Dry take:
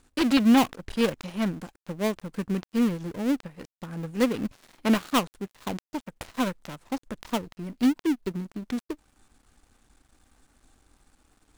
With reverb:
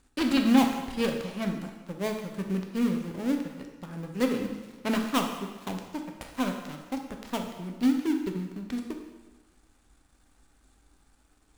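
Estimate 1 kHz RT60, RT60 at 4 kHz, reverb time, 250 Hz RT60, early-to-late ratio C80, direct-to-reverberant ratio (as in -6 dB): 1.2 s, 1.1 s, 1.2 s, 1.3 s, 7.5 dB, 3.0 dB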